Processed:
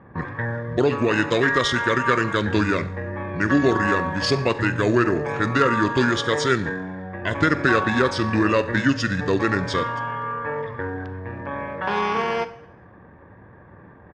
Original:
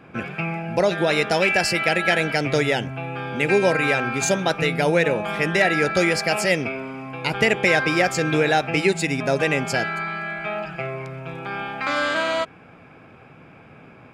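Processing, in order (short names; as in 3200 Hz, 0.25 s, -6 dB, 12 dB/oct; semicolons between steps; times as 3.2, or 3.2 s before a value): low-pass opened by the level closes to 2900 Hz, open at -19.5 dBFS; Schroeder reverb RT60 0.7 s, combs from 27 ms, DRR 13 dB; pitch shift -6 st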